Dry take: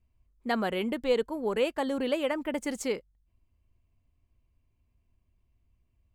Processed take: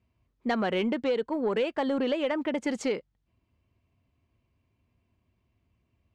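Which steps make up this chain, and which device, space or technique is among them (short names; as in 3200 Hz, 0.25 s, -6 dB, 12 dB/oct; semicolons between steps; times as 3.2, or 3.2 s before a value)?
AM radio (BPF 110–4400 Hz; compressor, threshold -29 dBFS, peak gain reduction 8.5 dB; soft clip -24.5 dBFS, distortion -21 dB); gain +6.5 dB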